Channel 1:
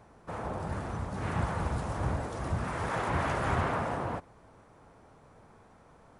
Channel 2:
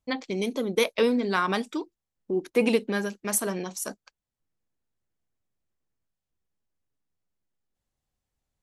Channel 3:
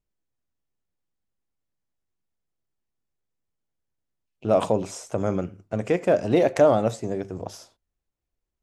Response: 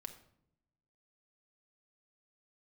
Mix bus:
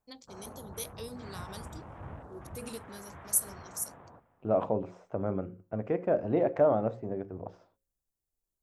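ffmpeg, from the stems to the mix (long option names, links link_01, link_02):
-filter_complex "[0:a]afwtdn=0.00708,volume=-12dB,afade=type=out:start_time=2.38:duration=0.62:silence=0.446684,asplit=2[link_01][link_02];[link_02]volume=-18dB[link_03];[1:a]crystalizer=i=7.5:c=0,equalizer=frequency=2100:width_type=o:width=1.7:gain=-14.5,volume=-19.5dB[link_04];[2:a]lowpass=1400,volume=-6.5dB[link_05];[link_03]aecho=0:1:401:1[link_06];[link_01][link_04][link_05][link_06]amix=inputs=4:normalize=0,bandreject=frequency=60:width_type=h:width=6,bandreject=frequency=120:width_type=h:width=6,bandreject=frequency=180:width_type=h:width=6,bandreject=frequency=240:width_type=h:width=6,bandreject=frequency=300:width_type=h:width=6,bandreject=frequency=360:width_type=h:width=6,bandreject=frequency=420:width_type=h:width=6,bandreject=frequency=480:width_type=h:width=6,bandreject=frequency=540:width_type=h:width=6"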